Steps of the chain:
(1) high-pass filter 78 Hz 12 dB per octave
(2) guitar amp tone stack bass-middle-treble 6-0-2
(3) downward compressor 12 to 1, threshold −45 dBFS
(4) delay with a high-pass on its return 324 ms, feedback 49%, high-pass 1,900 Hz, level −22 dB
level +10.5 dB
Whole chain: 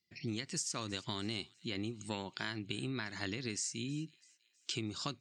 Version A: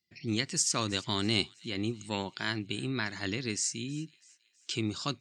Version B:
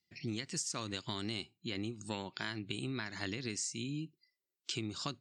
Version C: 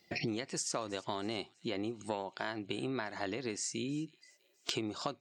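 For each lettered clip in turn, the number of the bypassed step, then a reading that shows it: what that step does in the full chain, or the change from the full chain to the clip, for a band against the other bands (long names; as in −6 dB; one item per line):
3, average gain reduction 5.5 dB
4, echo-to-direct ratio −25.0 dB to none audible
2, 500 Hz band +6.5 dB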